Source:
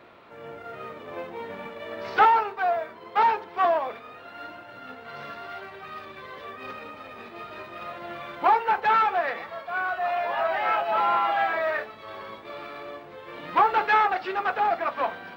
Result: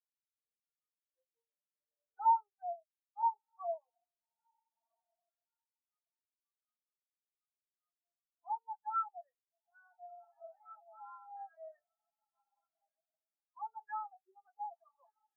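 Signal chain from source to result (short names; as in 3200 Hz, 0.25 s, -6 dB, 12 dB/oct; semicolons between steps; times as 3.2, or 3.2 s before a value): soft clip -16 dBFS, distortion -16 dB; diffused feedback echo 1.36 s, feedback 53%, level -7.5 dB; spectral expander 4:1; gain -6.5 dB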